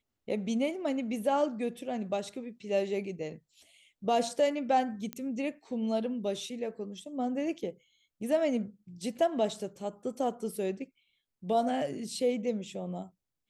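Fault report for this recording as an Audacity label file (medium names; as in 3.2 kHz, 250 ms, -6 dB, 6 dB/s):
5.130000	5.130000	pop -20 dBFS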